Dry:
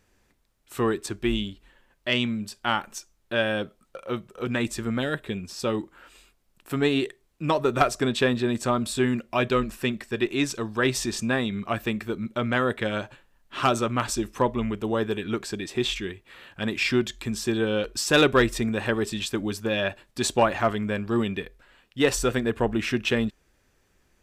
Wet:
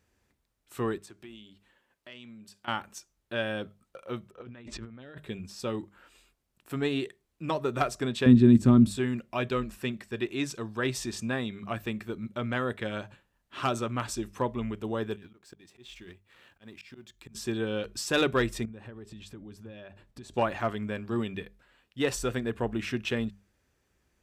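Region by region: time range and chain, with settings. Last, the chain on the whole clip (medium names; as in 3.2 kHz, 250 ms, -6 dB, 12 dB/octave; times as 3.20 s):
0.98–2.68 s: high-pass 230 Hz 6 dB/octave + compression 2.5:1, threshold -44 dBFS
4.31–5.18 s: gate -38 dBFS, range -10 dB + distance through air 150 m + compressor with a negative ratio -39 dBFS
8.26–8.91 s: resonant low shelf 400 Hz +13 dB, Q 1.5 + tape noise reduction on one side only decoder only
15.16–17.35 s: companding laws mixed up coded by A + slow attack 734 ms + compressor with a negative ratio -42 dBFS
18.65–20.34 s: tilt EQ -2 dB/octave + compression, threshold -37 dBFS
whole clip: high-pass 63 Hz; bass shelf 88 Hz +10 dB; hum notches 50/100/150/200 Hz; trim -7 dB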